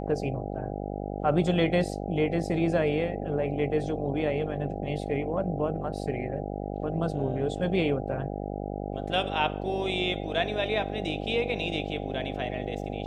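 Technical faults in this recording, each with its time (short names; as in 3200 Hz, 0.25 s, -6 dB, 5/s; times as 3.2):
buzz 50 Hz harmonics 16 -34 dBFS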